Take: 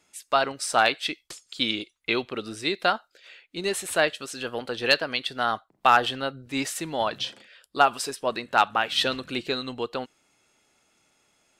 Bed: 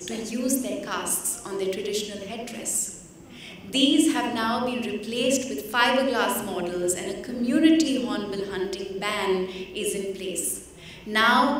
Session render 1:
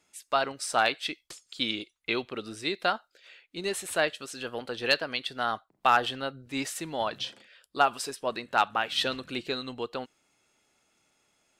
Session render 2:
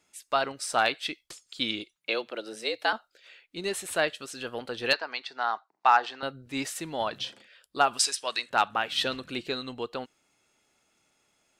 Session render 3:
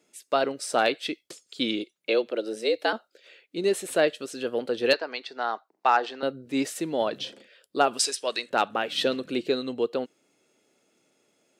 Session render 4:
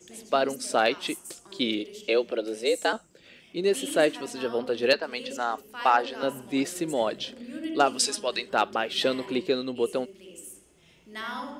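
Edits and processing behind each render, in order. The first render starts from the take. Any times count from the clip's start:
level −4 dB
0:01.96–0:02.93: frequency shifter +110 Hz; 0:04.93–0:06.23: loudspeaker in its box 470–6,300 Hz, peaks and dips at 550 Hz −7 dB, 890 Hz +7 dB, 3,200 Hz −9 dB; 0:07.99–0:08.50: meter weighting curve ITU-R 468
high-pass filter 200 Hz 12 dB per octave; low shelf with overshoot 670 Hz +7.5 dB, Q 1.5
mix in bed −16 dB

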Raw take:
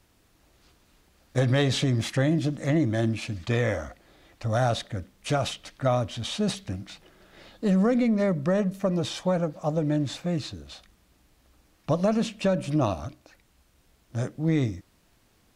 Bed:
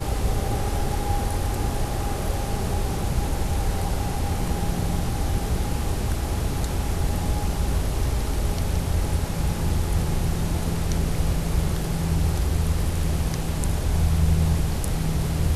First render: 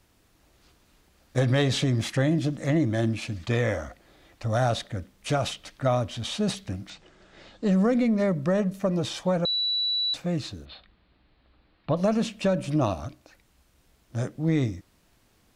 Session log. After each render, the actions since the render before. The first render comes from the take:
0:06.90–0:07.72: Butterworth low-pass 8,400 Hz 48 dB per octave
0:09.45–0:10.14: beep over 3,940 Hz −23 dBFS
0:10.65–0:11.97: elliptic low-pass filter 4,300 Hz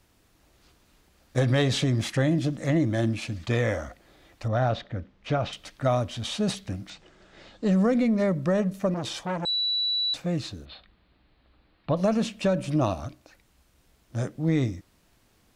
0:04.48–0:05.53: high-frequency loss of the air 220 metres
0:08.94–0:10.01: saturating transformer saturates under 970 Hz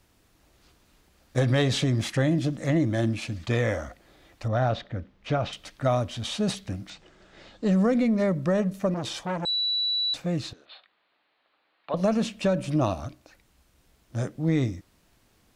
0:10.53–0:11.94: band-pass filter 650–4,200 Hz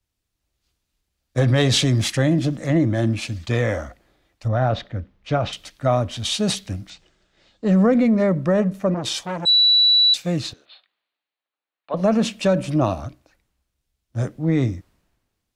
in parallel at +0.5 dB: brickwall limiter −20.5 dBFS, peak gain reduction 7.5 dB
on the sum: multiband upward and downward expander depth 70%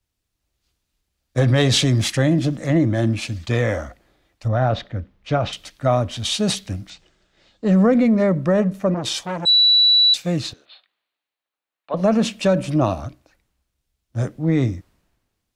level +1 dB

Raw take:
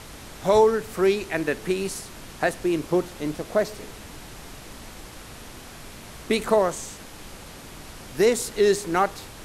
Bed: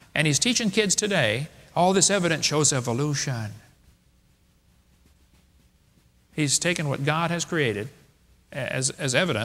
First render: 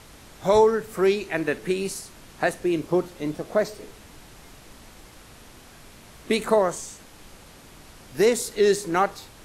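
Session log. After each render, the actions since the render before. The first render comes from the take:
noise reduction from a noise print 6 dB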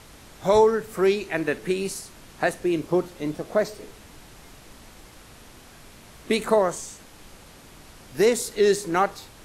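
no processing that can be heard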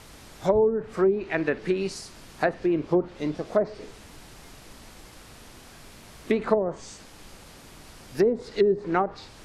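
treble cut that deepens with the level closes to 430 Hz, closed at −15 dBFS
dynamic equaliser 4,800 Hz, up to +5 dB, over −59 dBFS, Q 3.7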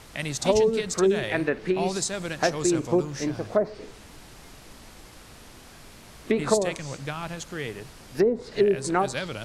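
mix in bed −9.5 dB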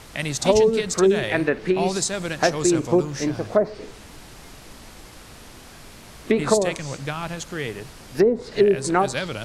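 level +4 dB
brickwall limiter −3 dBFS, peak gain reduction 1.5 dB

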